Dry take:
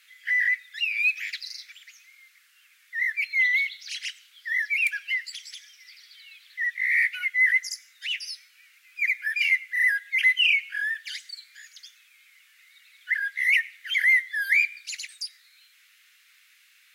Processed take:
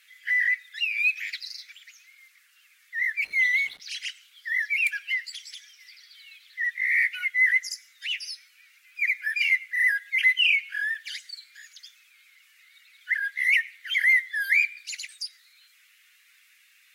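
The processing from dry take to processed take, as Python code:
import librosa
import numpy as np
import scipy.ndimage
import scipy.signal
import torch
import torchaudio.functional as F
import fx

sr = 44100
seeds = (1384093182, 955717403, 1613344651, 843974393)

y = fx.spec_quant(x, sr, step_db=15)
y = fx.backlash(y, sr, play_db=-40.0, at=(3.22, 3.8))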